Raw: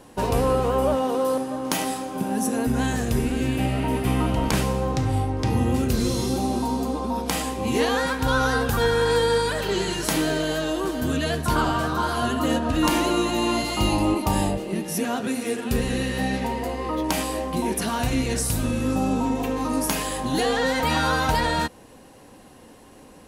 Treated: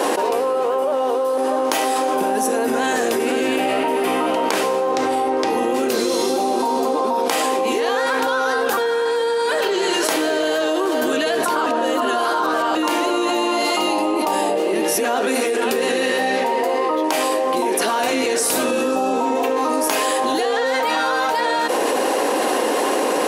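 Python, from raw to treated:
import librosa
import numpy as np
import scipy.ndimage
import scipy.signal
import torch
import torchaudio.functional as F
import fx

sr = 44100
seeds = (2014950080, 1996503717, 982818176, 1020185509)

y = fx.notch(x, sr, hz=2100.0, q=8.2, at=(18.69, 19.13))
y = fx.edit(y, sr, fx.reverse_span(start_s=11.66, length_s=1.09), tone=tone)
y = scipy.signal.sosfilt(scipy.signal.butter(4, 370.0, 'highpass', fs=sr, output='sos'), y)
y = fx.tilt_eq(y, sr, slope=-1.5)
y = fx.env_flatten(y, sr, amount_pct=100)
y = F.gain(torch.from_numpy(y), -1.5).numpy()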